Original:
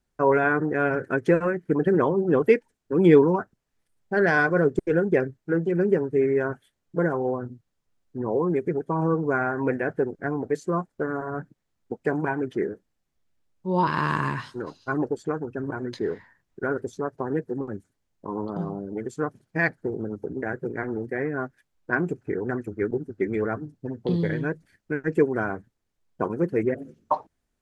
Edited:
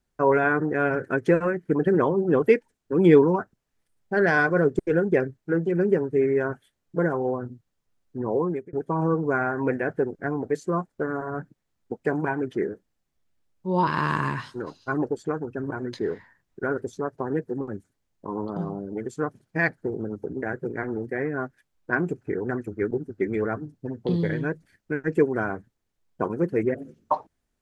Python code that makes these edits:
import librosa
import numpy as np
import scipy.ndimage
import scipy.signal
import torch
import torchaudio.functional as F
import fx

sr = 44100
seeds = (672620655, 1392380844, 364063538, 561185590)

y = fx.edit(x, sr, fx.fade_out_span(start_s=8.41, length_s=0.32), tone=tone)